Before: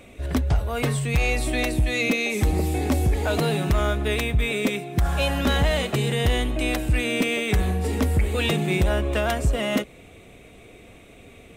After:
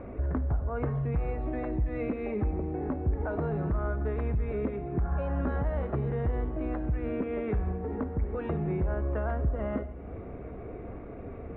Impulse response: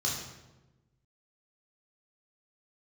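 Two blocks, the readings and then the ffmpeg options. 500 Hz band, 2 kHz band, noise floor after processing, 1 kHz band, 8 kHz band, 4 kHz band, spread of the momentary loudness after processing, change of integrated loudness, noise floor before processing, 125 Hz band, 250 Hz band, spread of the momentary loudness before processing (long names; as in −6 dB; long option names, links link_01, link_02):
−7.0 dB, −18.5 dB, −41 dBFS, −9.0 dB, below −40 dB, below −35 dB, 11 LU, −8.5 dB, −48 dBFS, −6.5 dB, −7.0 dB, 3 LU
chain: -filter_complex "[0:a]lowpass=frequency=1400:width=0.5412,lowpass=frequency=1400:width=1.3066,acompressor=threshold=-38dB:ratio=4,asplit=2[link_01][link_02];[1:a]atrim=start_sample=2205,asetrate=24696,aresample=44100[link_03];[link_02][link_03]afir=irnorm=-1:irlink=0,volume=-23dB[link_04];[link_01][link_04]amix=inputs=2:normalize=0,volume=7dB"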